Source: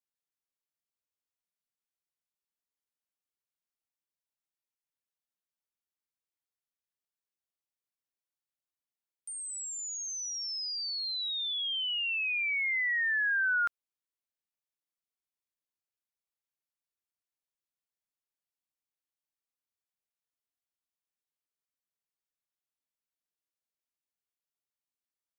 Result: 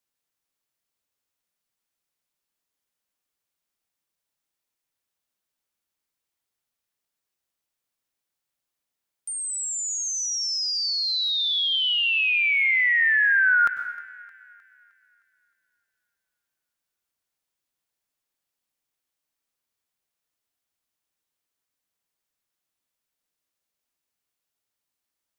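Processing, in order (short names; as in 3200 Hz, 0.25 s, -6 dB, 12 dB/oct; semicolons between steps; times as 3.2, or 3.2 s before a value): on a send: thinning echo 0.309 s, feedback 50%, high-pass 430 Hz, level -20.5 dB; on the sum: plate-style reverb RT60 1 s, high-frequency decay 0.9×, pre-delay 85 ms, DRR 9.5 dB; gain +9 dB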